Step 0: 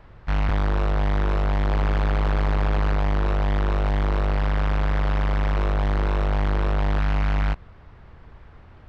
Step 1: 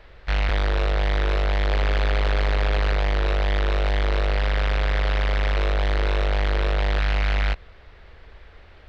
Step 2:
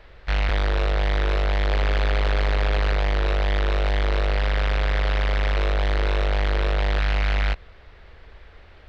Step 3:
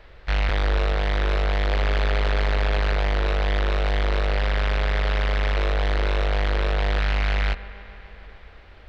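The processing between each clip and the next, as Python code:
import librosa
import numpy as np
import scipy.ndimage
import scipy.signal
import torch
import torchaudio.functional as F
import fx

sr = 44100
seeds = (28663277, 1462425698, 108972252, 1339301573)

y1 = fx.graphic_eq(x, sr, hz=(125, 250, 500, 1000, 2000, 4000), db=(-12, -7, 4, -6, 4, 7))
y1 = y1 * 10.0 ** (2.0 / 20.0)
y2 = y1
y3 = fx.echo_wet_lowpass(y2, sr, ms=144, feedback_pct=78, hz=2700.0, wet_db=-16.0)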